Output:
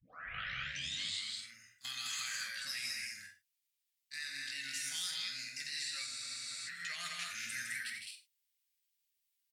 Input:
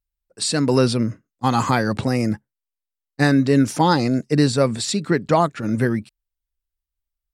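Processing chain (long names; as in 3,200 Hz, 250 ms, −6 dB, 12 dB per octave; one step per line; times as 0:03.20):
turntable start at the beginning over 1.01 s
inverse Chebyshev high-pass filter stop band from 1,000 Hz, stop band 40 dB
downward compressor 16 to 1, threshold −42 dBFS, peak gain reduction 21 dB
brickwall limiter −37 dBFS, peak gain reduction 10 dB
tempo change 0.77×
pitch vibrato 6 Hz 22 cents
loudspeakers that aren't time-aligned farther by 30 metres −9 dB, 54 metres −6 dB, 72 metres −3 dB, 87 metres −9 dB
reverb whose tail is shaped and stops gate 130 ms falling, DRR 4 dB
frozen spectrum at 0:06.09, 0.58 s
level +5 dB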